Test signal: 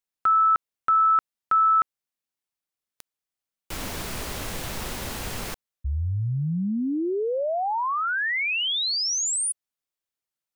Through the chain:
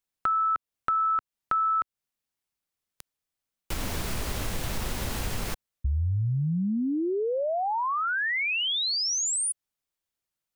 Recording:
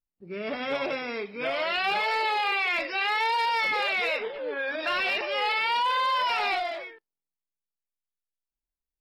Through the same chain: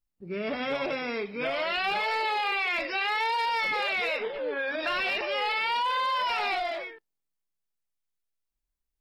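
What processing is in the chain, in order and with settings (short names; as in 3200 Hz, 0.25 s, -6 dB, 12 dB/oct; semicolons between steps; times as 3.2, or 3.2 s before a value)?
low shelf 150 Hz +7 dB; compressor 2.5:1, threshold -29 dBFS; gain +1.5 dB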